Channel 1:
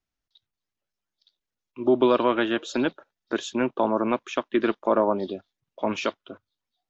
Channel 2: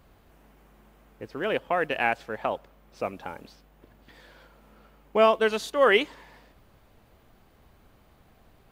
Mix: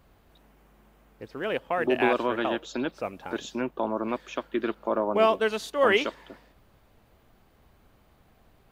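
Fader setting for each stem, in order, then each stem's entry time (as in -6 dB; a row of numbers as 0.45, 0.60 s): -5.5, -2.0 dB; 0.00, 0.00 s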